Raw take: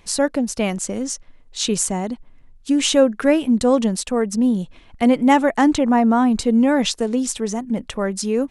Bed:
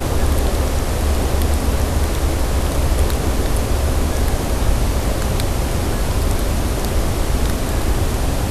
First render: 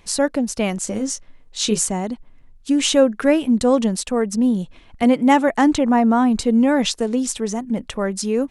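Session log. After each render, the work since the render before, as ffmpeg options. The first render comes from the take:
ffmpeg -i in.wav -filter_complex "[0:a]asettb=1/sr,asplit=3[link_01][link_02][link_03];[link_01]atrim=end=0.854[link_04];[link_02]atrim=start=0.85:end=1.86,asetpts=PTS-STARTPTS,afade=type=in:duration=0.004:curve=qsin,afade=type=out:start_time=1.006:duration=0.004:curve=qsin,asplit=2[link_05][link_06];[link_06]adelay=19,volume=-6.5dB[link_07];[link_05][link_07]amix=inputs=2:normalize=0,atrim=end_sample=44541[link_08];[link_03]atrim=start=1.856[link_09];[link_04][link_08]acrossfade=duration=0.004:curve1=hsin:curve2=qsin[link_10];[link_10][link_09]acrossfade=duration=0.004:curve1=qsin:curve2=hsin,asettb=1/sr,asplit=3[link_11][link_12][link_13];[link_11]atrim=end=5.034[link_14];[link_12]atrim=start=5.03:end=5.48,asetpts=PTS-STARTPTS,afade=type=in:duration=0.004:curve=qsin,afade=type=out:start_time=0.446:duration=0.004:curve=qsin,highpass=72[link_15];[link_13]atrim=start=5.476[link_16];[link_14][link_15]acrossfade=duration=0.004:curve1=hsin:curve2=qsin[link_17];[link_17][link_16]acrossfade=duration=0.004:curve1=qsin:curve2=hsin" out.wav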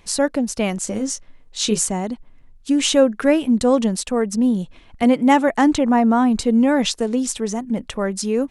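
ffmpeg -i in.wav -af anull out.wav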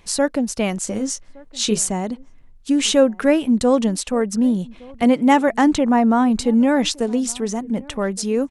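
ffmpeg -i in.wav -filter_complex "[0:a]asplit=2[link_01][link_02];[link_02]adelay=1166,volume=-24dB,highshelf=frequency=4000:gain=-26.2[link_03];[link_01][link_03]amix=inputs=2:normalize=0" out.wav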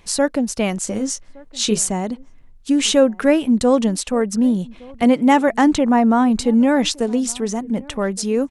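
ffmpeg -i in.wav -af "volume=1dB,alimiter=limit=-3dB:level=0:latency=1" out.wav

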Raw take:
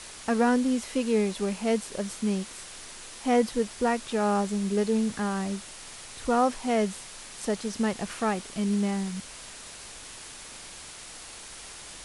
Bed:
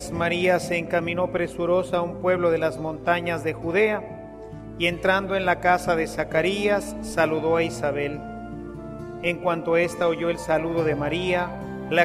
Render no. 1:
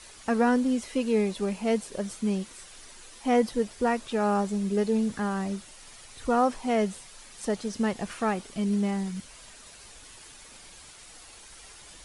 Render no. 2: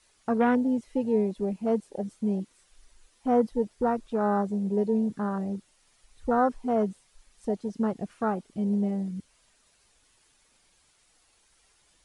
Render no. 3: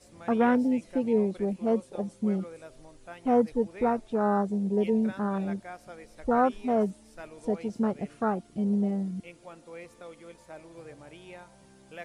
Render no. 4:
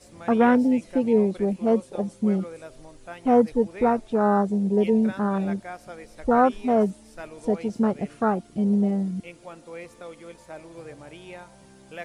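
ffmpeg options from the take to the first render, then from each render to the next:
ffmpeg -i in.wav -af "afftdn=noise_reduction=8:noise_floor=-44" out.wav
ffmpeg -i in.wav -af "afwtdn=0.0355" out.wav
ffmpeg -i in.wav -i bed.wav -filter_complex "[1:a]volume=-23.5dB[link_01];[0:a][link_01]amix=inputs=2:normalize=0" out.wav
ffmpeg -i in.wav -af "volume=5dB" out.wav

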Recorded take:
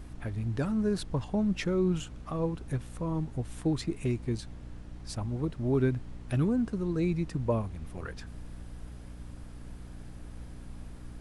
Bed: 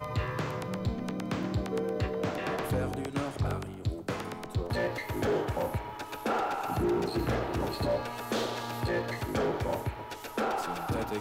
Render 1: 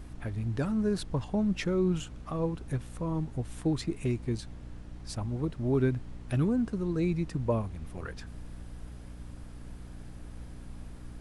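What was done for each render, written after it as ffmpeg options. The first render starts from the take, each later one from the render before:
ffmpeg -i in.wav -af anull out.wav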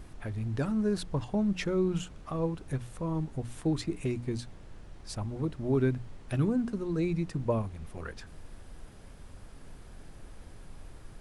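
ffmpeg -i in.wav -af "bandreject=frequency=60:width_type=h:width=6,bandreject=frequency=120:width_type=h:width=6,bandreject=frequency=180:width_type=h:width=6,bandreject=frequency=240:width_type=h:width=6,bandreject=frequency=300:width_type=h:width=6" out.wav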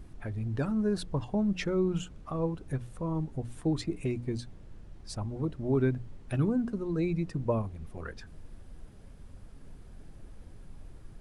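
ffmpeg -i in.wav -af "afftdn=noise_reduction=7:noise_floor=-50" out.wav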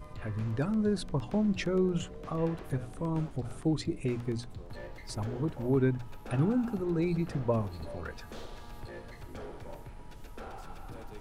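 ffmpeg -i in.wav -i bed.wav -filter_complex "[1:a]volume=-15dB[link_01];[0:a][link_01]amix=inputs=2:normalize=0" out.wav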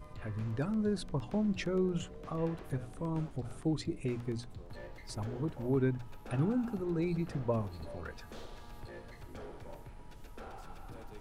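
ffmpeg -i in.wav -af "volume=-3.5dB" out.wav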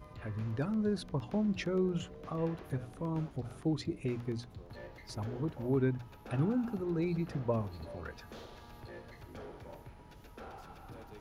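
ffmpeg -i in.wav -af "highpass=46,equalizer=frequency=8200:width=4.7:gain=-12.5" out.wav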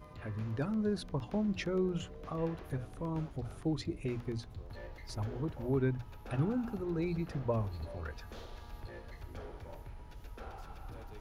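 ffmpeg -i in.wav -af "bandreject=frequency=60:width_type=h:width=6,bandreject=frequency=120:width_type=h:width=6,asubboost=boost=3.5:cutoff=87" out.wav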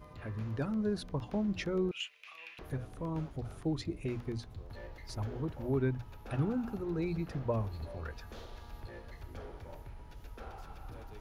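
ffmpeg -i in.wav -filter_complex "[0:a]asettb=1/sr,asplit=3[link_01][link_02][link_03];[link_01]atrim=end=1.914[link_04];[link_02]atrim=start=1.91:end=2.59,asetpts=PTS-STARTPTS,afade=type=in:duration=0.004:curve=qsin,afade=type=out:start_time=0.676:duration=0.004:curve=qsin,highpass=frequency=2500:width_type=q:width=6.6[link_05];[link_03]atrim=start=2.586[link_06];[link_04][link_05]acrossfade=duration=0.004:curve1=hsin:curve2=qsin[link_07];[link_07][link_06]acrossfade=duration=0.004:curve1=qsin:curve2=hsin" out.wav

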